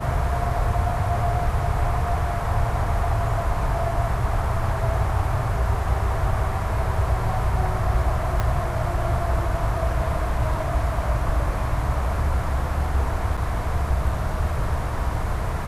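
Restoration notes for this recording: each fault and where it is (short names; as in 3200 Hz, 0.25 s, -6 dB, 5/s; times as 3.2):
8.4 pop -11 dBFS
13.37–13.38 gap 5.4 ms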